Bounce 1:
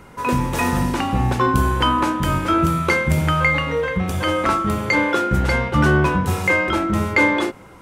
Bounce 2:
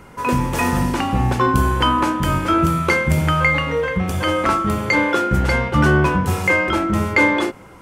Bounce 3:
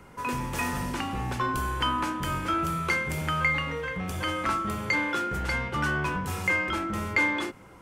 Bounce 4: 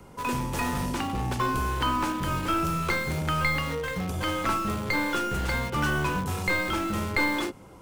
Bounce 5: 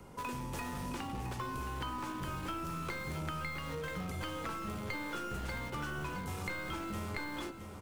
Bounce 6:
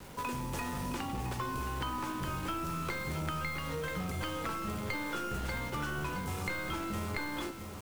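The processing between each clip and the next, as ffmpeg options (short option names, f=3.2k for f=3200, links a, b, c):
-af "bandreject=f=3.8k:w=21,volume=1dB"
-filter_complex "[0:a]acrossover=split=360|910[a][b][c];[a]asoftclip=type=tanh:threshold=-22.5dB[d];[b]acompressor=threshold=-35dB:ratio=6[e];[d][e][c]amix=inputs=3:normalize=0,volume=-7.5dB"
-filter_complex "[0:a]acrossover=split=410|1300|2400[a][b][c][d];[c]acrusher=bits=4:dc=4:mix=0:aa=0.000001[e];[d]alimiter=level_in=5.5dB:limit=-24dB:level=0:latency=1:release=277,volume=-5.5dB[f];[a][b][e][f]amix=inputs=4:normalize=0,volume=2.5dB"
-af "acompressor=threshold=-33dB:ratio=6,aecho=1:1:668|1336|2004|2672|3340:0.299|0.149|0.0746|0.0373|0.0187,volume=-4dB"
-af "acrusher=bits=8:mix=0:aa=0.000001,volume=3dB"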